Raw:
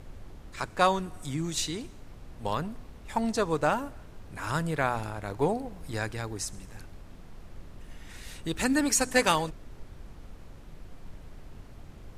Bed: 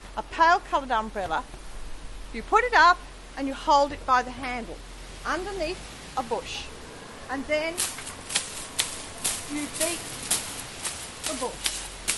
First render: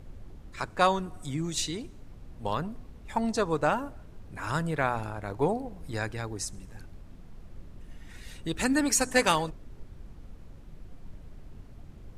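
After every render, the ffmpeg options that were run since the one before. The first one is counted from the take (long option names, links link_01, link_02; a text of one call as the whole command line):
ffmpeg -i in.wav -af "afftdn=noise_reduction=6:noise_floor=-48" out.wav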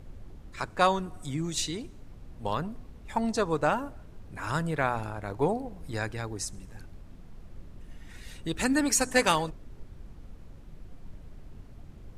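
ffmpeg -i in.wav -af anull out.wav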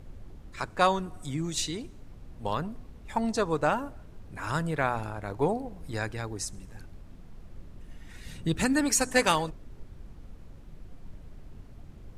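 ffmpeg -i in.wav -filter_complex "[0:a]asettb=1/sr,asplit=3[link_01][link_02][link_03];[link_01]atrim=end=8.244[link_04];[link_02]atrim=start=8.24:end=8.65,asetpts=PTS-STARTPTS,afade=type=in:duration=0.004:curve=qsin,afade=type=out:start_time=0.406:duration=0.004:curve=qsin,equalizer=frequency=150:width=0.94:gain=8.5[link_05];[link_03]atrim=start=8.646[link_06];[link_04][link_05]acrossfade=duration=0.004:curve1=hsin:curve2=qsin[link_07];[link_07][link_06]acrossfade=duration=0.004:curve1=qsin:curve2=hsin" out.wav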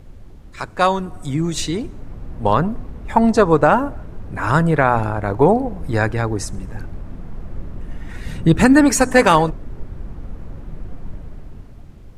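ffmpeg -i in.wav -filter_complex "[0:a]acrossover=split=2000[link_01][link_02];[link_01]dynaudnorm=framelen=260:gausssize=9:maxgain=11.5dB[link_03];[link_03][link_02]amix=inputs=2:normalize=0,alimiter=level_in=5dB:limit=-1dB:release=50:level=0:latency=1" out.wav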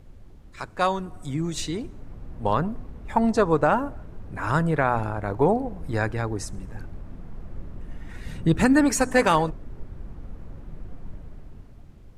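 ffmpeg -i in.wav -af "volume=-7dB" out.wav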